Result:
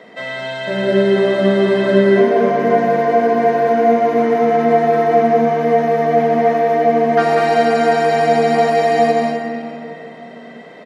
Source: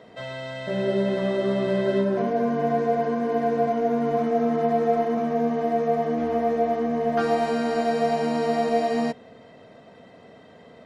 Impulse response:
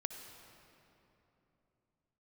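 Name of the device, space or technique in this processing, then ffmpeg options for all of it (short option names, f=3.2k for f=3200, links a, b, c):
stadium PA: -filter_complex "[0:a]highpass=f=170:w=0.5412,highpass=f=170:w=1.3066,equalizer=f=2k:t=o:w=0.53:g=7,aecho=1:1:192.4|244.9:0.631|0.398[a];[1:a]atrim=start_sample=2205[b];[a][b]afir=irnorm=-1:irlink=0,volume=8.5dB"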